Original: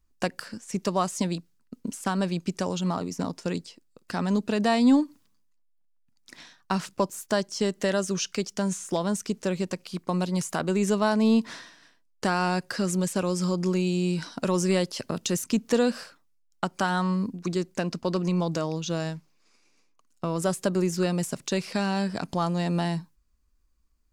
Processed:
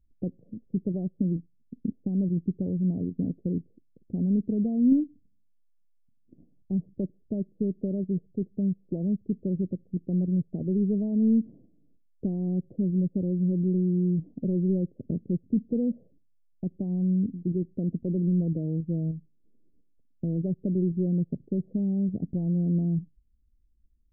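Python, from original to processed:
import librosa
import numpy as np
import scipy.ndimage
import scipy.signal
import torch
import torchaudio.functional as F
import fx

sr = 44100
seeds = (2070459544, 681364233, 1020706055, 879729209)

p1 = fx.level_steps(x, sr, step_db=16)
p2 = x + F.gain(torch.from_numpy(p1), 2.0).numpy()
y = scipy.ndimage.gaussian_filter1d(p2, 25.0, mode='constant')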